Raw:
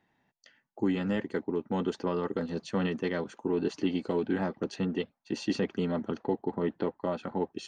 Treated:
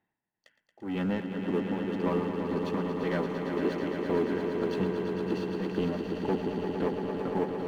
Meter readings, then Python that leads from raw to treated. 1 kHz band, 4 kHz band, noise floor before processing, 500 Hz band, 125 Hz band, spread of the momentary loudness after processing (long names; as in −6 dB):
+2.0 dB, −2.5 dB, −77 dBFS, +2.0 dB, +1.5 dB, 3 LU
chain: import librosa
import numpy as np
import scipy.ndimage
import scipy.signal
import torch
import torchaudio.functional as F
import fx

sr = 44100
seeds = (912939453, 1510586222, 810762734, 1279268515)

y = scipy.signal.sosfilt(scipy.signal.butter(2, 3100.0, 'lowpass', fs=sr, output='sos'), x)
y = fx.leveller(y, sr, passes=2)
y = y * (1.0 - 0.83 / 2.0 + 0.83 / 2.0 * np.cos(2.0 * np.pi * 1.9 * (np.arange(len(y)) / sr)))
y = fx.echo_swell(y, sr, ms=114, loudest=5, wet_db=-8.0)
y = y * librosa.db_to_amplitude(-4.0)